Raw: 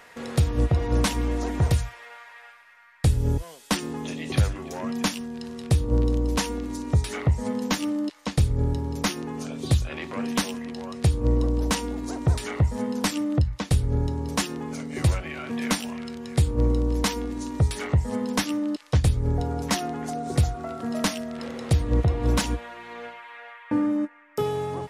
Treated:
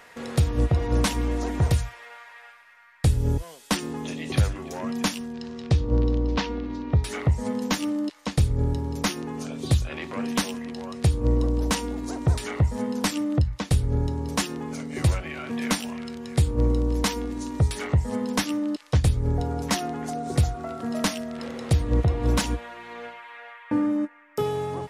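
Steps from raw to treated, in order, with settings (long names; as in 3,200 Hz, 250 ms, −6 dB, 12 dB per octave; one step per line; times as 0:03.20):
0:05.32–0:07.03: low-pass filter 7,200 Hz → 3,600 Hz 24 dB per octave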